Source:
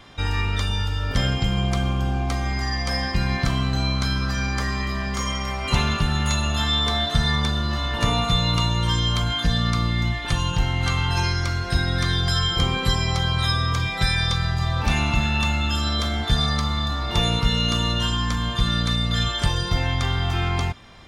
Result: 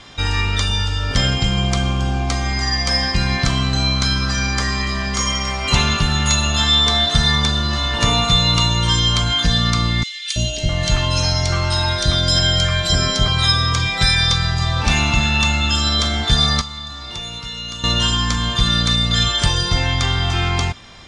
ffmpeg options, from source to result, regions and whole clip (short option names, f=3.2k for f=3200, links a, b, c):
-filter_complex "[0:a]asettb=1/sr,asplit=3[a][b][c];[a]atrim=end=10.034[d];[b]atrim=start=10.03:end=13.28,asetpts=PTS-STARTPTS,afade=t=in:d=0.004:c=qsin,afade=t=out:st=3.246:d=0.004:c=qsin,aeval=exprs='val(0)+0.0631*sin(2*PI*620*n/s)':c=same,acrossover=split=530|2300[e][f][g];[e]adelay=330[h];[f]adelay=660[i];[h][i][g]amix=inputs=3:normalize=0,atrim=end_sample=143325[j];[c]atrim=start=13.276[k];[d][j]acrossfade=d=0.004:c1=hsin:c2=qsin[l];[l][k]acrossfade=d=0.004:c1=qsin:c2=hsin,asettb=1/sr,asplit=3[m][n][o];[m]atrim=end=16.614[p];[n]atrim=start=16.61:end=17.84,asetpts=PTS-STARTPTS,afade=t=in:d=0.004:c=qsin,afade=t=out:st=1.226:d=0.004:c=qsin,acrossover=split=150|350|2700[q][r][s][t];[q]acompressor=threshold=-27dB:ratio=3[u];[r]acompressor=threshold=-38dB:ratio=3[v];[s]acompressor=threshold=-44dB:ratio=3[w];[t]acompressor=threshold=-44dB:ratio=3[x];[u][v][w][x]amix=inputs=4:normalize=0,lowshelf=f=400:g=-12[y];[o]atrim=start=17.836[z];[p][y]acrossfade=d=0.004:c1=hsin:c2=qsin[aa];[aa][z]acrossfade=d=0.004:c1=qsin:c2=hsin,lowpass=f=8k:w=0.5412,lowpass=f=8k:w=1.3066,highshelf=f=3.7k:g=10.5,volume=3.5dB"